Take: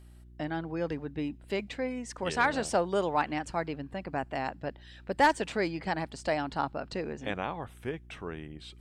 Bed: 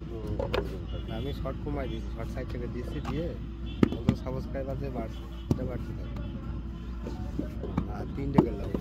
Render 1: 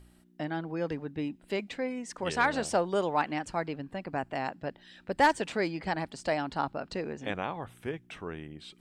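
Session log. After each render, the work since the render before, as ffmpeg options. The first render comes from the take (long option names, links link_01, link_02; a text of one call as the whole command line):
ffmpeg -i in.wav -af "bandreject=frequency=60:width_type=h:width=4,bandreject=frequency=120:width_type=h:width=4" out.wav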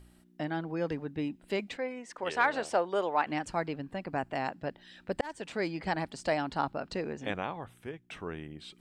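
ffmpeg -i in.wav -filter_complex "[0:a]asettb=1/sr,asplit=3[link_01][link_02][link_03];[link_01]atrim=end=1.774[link_04];[link_02]atrim=start=1.77:end=3.27,asetpts=PTS-STARTPTS,afade=type=in:duration=0.004:curve=qsin,afade=type=out:start_time=1.496:duration=0.004:curve=qsin,bass=frequency=250:gain=-14,treble=frequency=4000:gain=-8[link_05];[link_03]atrim=start=3.266[link_06];[link_04][link_05]acrossfade=duration=0.004:curve1=hsin:curve2=qsin[link_07];[link_07][link_06]acrossfade=duration=0.004:curve1=qsin:curve2=hsin,asplit=3[link_08][link_09][link_10];[link_08]atrim=end=5.21,asetpts=PTS-STARTPTS,afade=type=out:start_time=5.206:duration=0.004:curve=hsin[link_11];[link_09]atrim=start=5.21:end=8.1,asetpts=PTS-STARTPTS,afade=type=in:duration=0.76:curve=qsin,afade=type=out:start_time=2.04:duration=0.85:silence=0.375837[link_12];[link_10]atrim=start=8.1,asetpts=PTS-STARTPTS,afade=type=in:duration=0.004:curve=hsin:silence=0.375837[link_13];[link_11][link_12][link_13]concat=n=3:v=0:a=1" out.wav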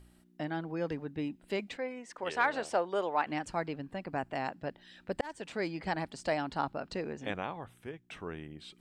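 ffmpeg -i in.wav -af "volume=-2dB" out.wav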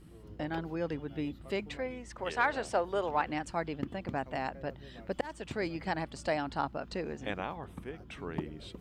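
ffmpeg -i in.wav -i bed.wav -filter_complex "[1:a]volume=-16dB[link_01];[0:a][link_01]amix=inputs=2:normalize=0" out.wav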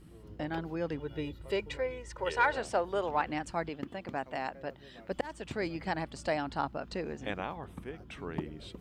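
ffmpeg -i in.wav -filter_complex "[0:a]asettb=1/sr,asplit=3[link_01][link_02][link_03];[link_01]atrim=end=1.004[link_04];[link_02]atrim=start=1:end=2.58,asetpts=PTS-STARTPTS,afade=type=in:duration=0.004:curve=qsin,afade=type=out:start_time=1.576:duration=0.004:curve=qsin,aecho=1:1:2.1:0.65,atrim=end_sample=69678[link_05];[link_03]atrim=start=2.576[link_06];[link_04][link_05]acrossfade=duration=0.004:curve1=hsin:curve2=qsin[link_07];[link_07][link_06]acrossfade=duration=0.004:curve1=qsin:curve2=hsin,asettb=1/sr,asplit=3[link_08][link_09][link_10];[link_08]atrim=end=3.694[link_11];[link_09]atrim=start=3.69:end=5.11,asetpts=PTS-STARTPTS,afade=type=in:duration=0.004:curve=qsin,afade=type=out:start_time=1.416:duration=0.004:curve=qsin,lowshelf=frequency=170:gain=-10.5[link_12];[link_10]atrim=start=5.106[link_13];[link_11][link_12]acrossfade=duration=0.004:curve1=hsin:curve2=qsin[link_14];[link_14][link_13]acrossfade=duration=0.004:curve1=qsin:curve2=hsin" out.wav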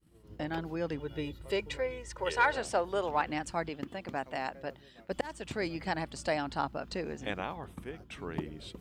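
ffmpeg -i in.wav -af "agate=range=-33dB:threshold=-45dB:ratio=3:detection=peak,highshelf=frequency=3900:gain=5.5" out.wav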